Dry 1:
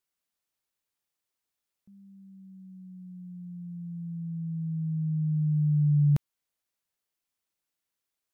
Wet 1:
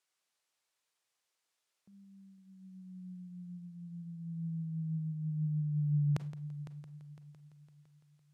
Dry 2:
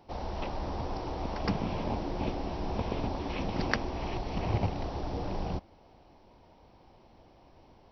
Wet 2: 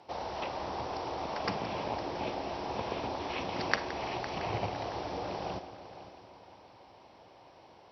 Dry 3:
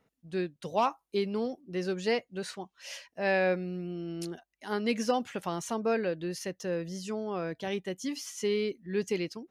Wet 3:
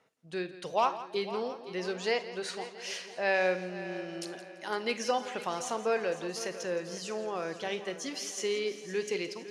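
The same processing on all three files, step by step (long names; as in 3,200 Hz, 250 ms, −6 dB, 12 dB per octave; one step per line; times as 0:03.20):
high-pass filter 160 Hz 12 dB per octave
in parallel at −2 dB: downward compressor, threshold −41 dBFS
on the sum: low-pass filter 9,200 Hz 12 dB per octave
parametric band 220 Hz −10 dB 1.4 octaves
on a send: echo machine with several playback heads 169 ms, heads first and third, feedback 55%, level −15 dB
on the sum: four-comb reverb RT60 0.32 s, combs from 33 ms, DRR 13 dB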